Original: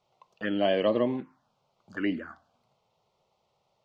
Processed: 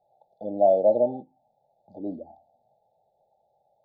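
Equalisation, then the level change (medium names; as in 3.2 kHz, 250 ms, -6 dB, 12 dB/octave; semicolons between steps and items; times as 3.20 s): brick-wall FIR band-stop 880–3400 Hz; distance through air 360 m; high-order bell 890 Hz +13.5 dB; -4.0 dB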